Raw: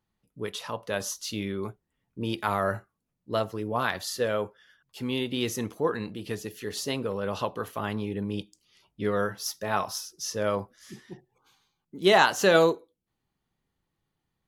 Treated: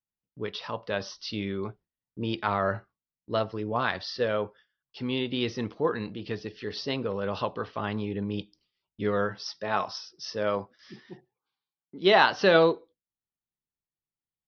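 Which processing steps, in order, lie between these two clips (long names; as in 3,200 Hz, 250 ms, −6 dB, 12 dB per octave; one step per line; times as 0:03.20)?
Butterworth low-pass 5,500 Hz 96 dB per octave
noise gate with hold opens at −48 dBFS
0:09.46–0:12.24: high-pass filter 160 Hz 6 dB per octave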